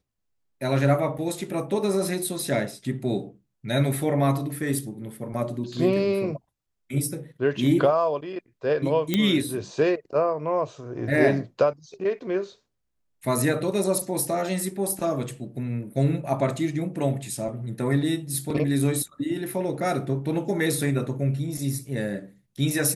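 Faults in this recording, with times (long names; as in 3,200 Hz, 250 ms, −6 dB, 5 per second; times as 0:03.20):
0:01.18: drop-out 4.3 ms
0:09.14: click −9 dBFS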